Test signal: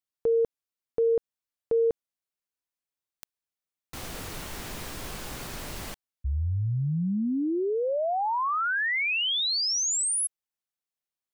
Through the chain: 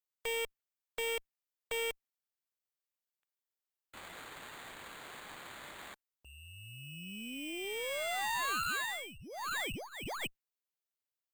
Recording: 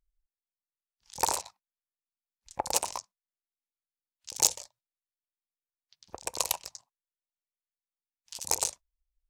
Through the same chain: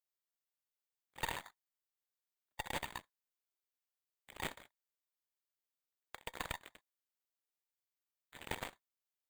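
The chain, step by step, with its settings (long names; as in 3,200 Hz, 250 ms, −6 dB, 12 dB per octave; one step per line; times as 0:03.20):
samples in bit-reversed order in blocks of 16 samples
noise gate −47 dBFS, range −34 dB
resonant band-pass 2,000 Hz, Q 1.1
soft clipping −26.5 dBFS
harmonic generator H 2 −8 dB, 5 −37 dB, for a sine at −26.5 dBFS
bad sample-rate conversion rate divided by 8×, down none, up hold
level −1 dB
Nellymoser 88 kbit/s 44,100 Hz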